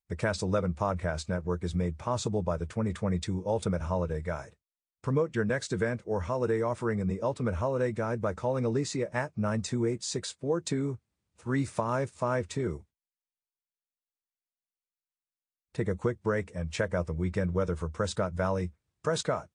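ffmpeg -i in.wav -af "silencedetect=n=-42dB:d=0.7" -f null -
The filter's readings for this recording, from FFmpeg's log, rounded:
silence_start: 12.78
silence_end: 15.75 | silence_duration: 2.97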